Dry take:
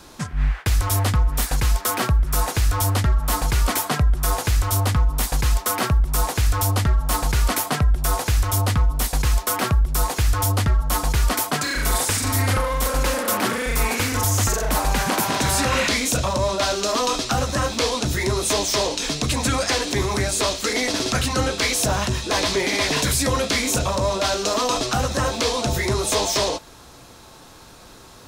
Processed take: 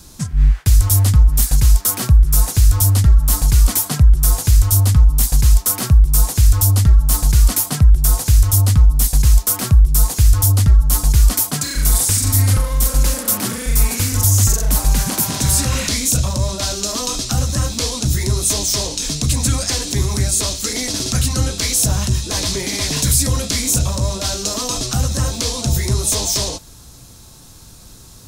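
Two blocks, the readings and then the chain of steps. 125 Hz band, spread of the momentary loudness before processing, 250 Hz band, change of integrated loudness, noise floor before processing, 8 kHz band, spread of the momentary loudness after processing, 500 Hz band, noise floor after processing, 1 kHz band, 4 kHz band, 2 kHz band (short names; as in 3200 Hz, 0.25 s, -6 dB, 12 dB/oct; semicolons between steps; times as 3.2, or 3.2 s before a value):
+8.0 dB, 2 LU, +2.0 dB, +5.5 dB, -45 dBFS, +7.0 dB, 7 LU, -5.0 dB, -41 dBFS, -6.5 dB, +2.0 dB, -5.0 dB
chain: tone controls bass +15 dB, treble +15 dB; gain -6.5 dB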